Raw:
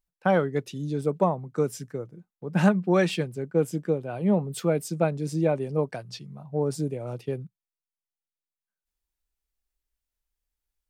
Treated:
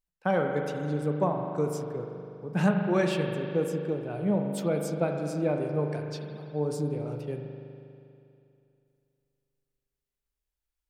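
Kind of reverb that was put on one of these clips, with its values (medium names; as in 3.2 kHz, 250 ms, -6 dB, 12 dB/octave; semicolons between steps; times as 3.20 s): spring tank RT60 2.7 s, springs 40 ms, chirp 45 ms, DRR 3 dB; trim -4.5 dB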